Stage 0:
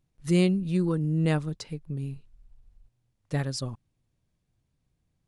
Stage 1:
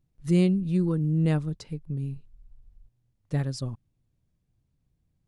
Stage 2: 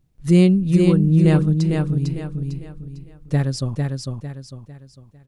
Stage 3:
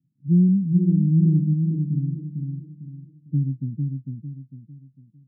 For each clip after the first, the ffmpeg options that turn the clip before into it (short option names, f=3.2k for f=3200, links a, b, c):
-af "lowshelf=f=380:g=8,volume=-5dB"
-af "aecho=1:1:451|902|1353|1804|2255:0.631|0.227|0.0818|0.0294|0.0106,volume=8dB"
-af "asuperpass=centerf=190:order=8:qfactor=1.1,volume=-2.5dB"